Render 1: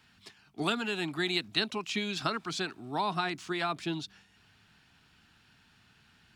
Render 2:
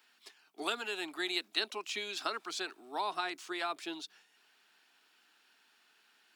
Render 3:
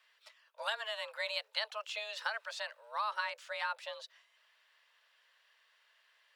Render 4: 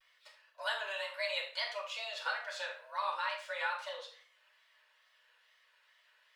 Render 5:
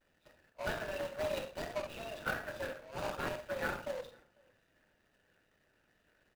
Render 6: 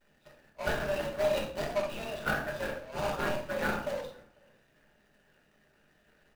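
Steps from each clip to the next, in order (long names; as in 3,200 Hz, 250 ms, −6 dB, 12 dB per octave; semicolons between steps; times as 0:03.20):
high-pass filter 340 Hz 24 dB per octave; high-shelf EQ 11,000 Hz +11.5 dB; level −4 dB
bass and treble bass −13 dB, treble −9 dB; frequency shifter +220 Hz
tape wow and flutter 140 cents; convolution reverb RT60 0.45 s, pre-delay 5 ms, DRR −2.5 dB; level −5 dB
running median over 41 samples; slap from a distant wall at 85 metres, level −29 dB; level +8.5 dB
rectangular room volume 310 cubic metres, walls furnished, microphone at 1.3 metres; level +4 dB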